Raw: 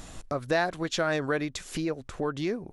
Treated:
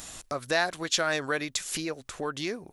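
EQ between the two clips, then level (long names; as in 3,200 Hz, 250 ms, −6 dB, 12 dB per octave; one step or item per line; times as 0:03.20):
spectral tilt +3 dB per octave
low-shelf EQ 120 Hz +5 dB
0.0 dB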